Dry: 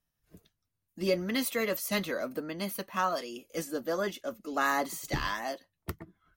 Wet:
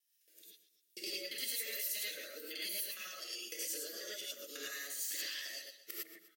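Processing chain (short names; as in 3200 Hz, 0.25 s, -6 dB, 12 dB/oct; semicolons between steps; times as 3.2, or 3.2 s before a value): local time reversal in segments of 69 ms; HPF 600 Hz 24 dB/oct; bell 1300 Hz -10 dB 2 oct; compressor 10:1, threshold -47 dBFS, peak gain reduction 17 dB; Butterworth band-stop 870 Hz, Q 0.56; on a send: feedback echo 0.125 s, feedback 47%, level -14 dB; on the sum: non-linear reverb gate 0.13 s rising, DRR -6 dB; gain +5.5 dB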